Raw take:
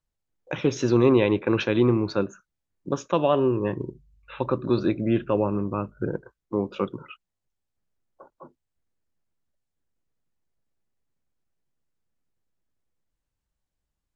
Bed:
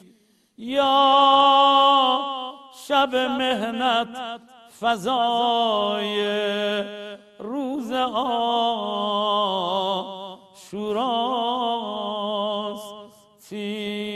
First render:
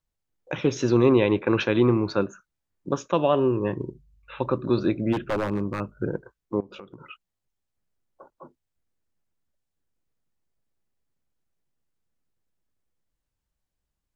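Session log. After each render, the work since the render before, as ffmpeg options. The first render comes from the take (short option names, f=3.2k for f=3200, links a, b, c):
-filter_complex "[0:a]asettb=1/sr,asplit=3[a][b][c];[a]atrim=end=1.314[d];[b]atrim=start=1.31:end=2.98,asetpts=PTS-STARTPTS,afade=t=in:d=0.004:c=qsin,afade=t=out:st=1.666:d=0.004:c=qsin,equalizer=f=1.2k:t=o:w=1.8:g=2.5[e];[c]atrim=start=2.976[f];[d][e]acrossfade=d=0.004:c1=hsin:c2=qsin[g];[g][f]acrossfade=d=0.004:c1=qsin:c2=hsin,asplit=3[h][i][j];[h]afade=t=out:st=5.12:d=0.02[k];[i]aeval=exprs='0.112*(abs(mod(val(0)/0.112+3,4)-2)-1)':c=same,afade=t=in:st=5.12:d=0.02,afade=t=out:st=5.79:d=0.02[l];[j]afade=t=in:st=5.79:d=0.02[m];[k][l][m]amix=inputs=3:normalize=0,asettb=1/sr,asplit=3[n][o][p];[n]atrim=end=6.604[q];[o]atrim=start=6.6:end=7.09,asetpts=PTS-STARTPTS,afade=t=in:d=0.004:c=qsin,afade=t=out:st=0.486:d=0.004:c=qsin,acompressor=threshold=-38dB:ratio=12:attack=3.2:release=140:knee=1:detection=peak[r];[p]atrim=start=7.086[s];[q][r]acrossfade=d=0.004:c1=hsin:c2=qsin[t];[t][s]acrossfade=d=0.004:c1=qsin:c2=hsin"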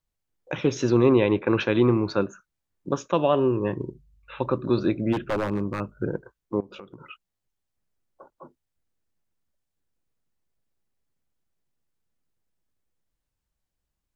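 -filter_complex "[0:a]asettb=1/sr,asplit=3[a][b][c];[a]atrim=end=0.904[d];[b]atrim=start=0.9:end=1.68,asetpts=PTS-STARTPTS,afade=t=in:d=0.004:c=qsin,afade=t=out:st=0.776:d=0.004:c=qsin,highshelf=f=5.6k:g=-6.5[e];[c]atrim=start=1.676[f];[d][e]acrossfade=d=0.004:c1=hsin:c2=qsin[g];[g][f]acrossfade=d=0.004:c1=qsin:c2=hsin"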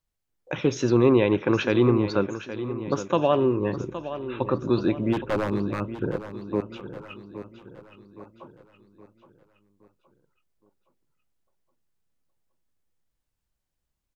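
-af "aecho=1:1:818|1636|2454|3272|4090:0.251|0.113|0.0509|0.0229|0.0103"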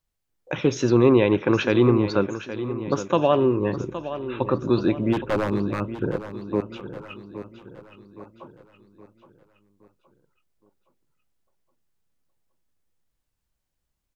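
-af "volume=2dB"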